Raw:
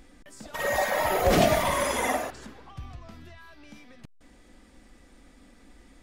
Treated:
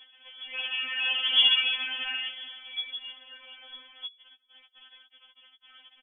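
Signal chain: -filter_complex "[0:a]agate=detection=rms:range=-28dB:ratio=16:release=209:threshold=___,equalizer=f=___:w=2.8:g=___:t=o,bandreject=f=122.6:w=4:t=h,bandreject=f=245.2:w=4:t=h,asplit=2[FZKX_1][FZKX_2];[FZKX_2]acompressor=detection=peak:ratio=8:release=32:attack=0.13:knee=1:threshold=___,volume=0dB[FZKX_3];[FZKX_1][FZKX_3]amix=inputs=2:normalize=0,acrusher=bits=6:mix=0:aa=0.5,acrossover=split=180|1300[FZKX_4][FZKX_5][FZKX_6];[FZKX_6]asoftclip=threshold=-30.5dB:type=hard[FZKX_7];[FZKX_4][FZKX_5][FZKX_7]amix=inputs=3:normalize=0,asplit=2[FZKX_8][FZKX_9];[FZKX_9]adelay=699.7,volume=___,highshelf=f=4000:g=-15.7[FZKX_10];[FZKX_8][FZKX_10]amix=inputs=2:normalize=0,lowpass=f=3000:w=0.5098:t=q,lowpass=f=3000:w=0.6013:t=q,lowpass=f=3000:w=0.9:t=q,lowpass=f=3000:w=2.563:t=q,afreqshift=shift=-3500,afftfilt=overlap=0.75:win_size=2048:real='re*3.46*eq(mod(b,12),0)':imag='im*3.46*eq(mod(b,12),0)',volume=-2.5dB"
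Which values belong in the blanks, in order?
-50dB, 62, 13, -35dB, -30dB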